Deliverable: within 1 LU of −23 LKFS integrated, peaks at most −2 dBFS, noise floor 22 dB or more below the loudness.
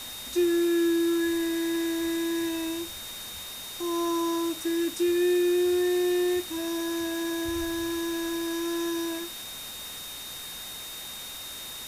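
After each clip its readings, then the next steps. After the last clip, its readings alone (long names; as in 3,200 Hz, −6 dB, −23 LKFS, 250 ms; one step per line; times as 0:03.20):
interfering tone 3,700 Hz; level of the tone −40 dBFS; background noise floor −39 dBFS; target noise floor −51 dBFS; integrated loudness −28.5 LKFS; sample peak −15.5 dBFS; target loudness −23.0 LKFS
→ notch filter 3,700 Hz, Q 30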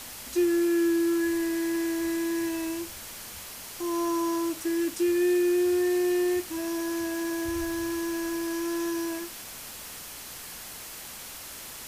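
interfering tone none found; background noise floor −42 dBFS; target noise floor −51 dBFS
→ broadband denoise 9 dB, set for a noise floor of −42 dBFS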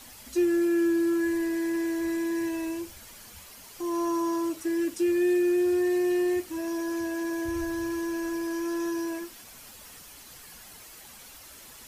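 background noise floor −48 dBFS; target noise floor −50 dBFS
→ broadband denoise 6 dB, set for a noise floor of −48 dBFS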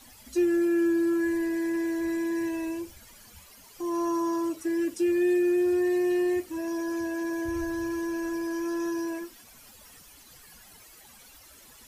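background noise floor −53 dBFS; integrated loudness −28.0 LKFS; sample peak −16.5 dBFS; target loudness −23.0 LKFS
→ level +5 dB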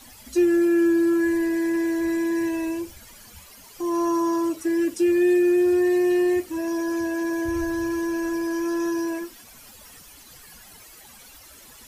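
integrated loudness −23.0 LKFS; sample peak −11.5 dBFS; background noise floor −48 dBFS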